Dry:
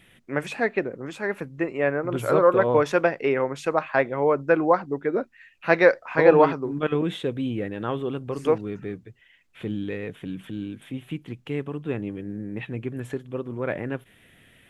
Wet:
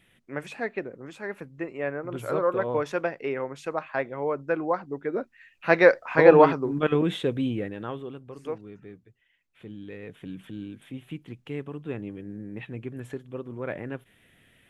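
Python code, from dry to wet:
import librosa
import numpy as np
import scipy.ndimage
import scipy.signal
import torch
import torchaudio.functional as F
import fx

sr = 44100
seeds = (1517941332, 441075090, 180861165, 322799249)

y = fx.gain(x, sr, db=fx.line((4.7, -7.0), (6.01, 1.0), (7.43, 1.0), (8.25, -12.0), (9.75, -12.0), (10.25, -5.0)))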